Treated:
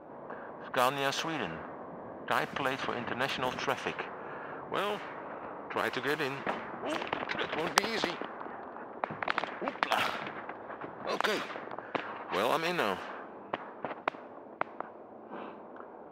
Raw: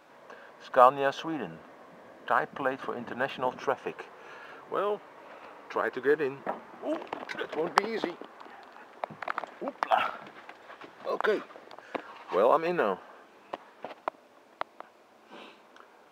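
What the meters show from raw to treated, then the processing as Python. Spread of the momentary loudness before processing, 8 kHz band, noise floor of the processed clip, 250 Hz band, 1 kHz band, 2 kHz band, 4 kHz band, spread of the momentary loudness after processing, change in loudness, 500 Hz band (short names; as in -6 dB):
22 LU, +9.5 dB, -49 dBFS, -1.0 dB, -3.5 dB, +1.5 dB, +6.5 dB, 15 LU, -4.0 dB, -5.5 dB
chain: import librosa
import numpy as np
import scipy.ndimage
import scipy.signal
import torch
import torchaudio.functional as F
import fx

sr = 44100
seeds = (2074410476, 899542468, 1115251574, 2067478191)

y = fx.env_lowpass(x, sr, base_hz=630.0, full_db=-26.0)
y = fx.spectral_comp(y, sr, ratio=2.0)
y = y * librosa.db_to_amplitude(1.0)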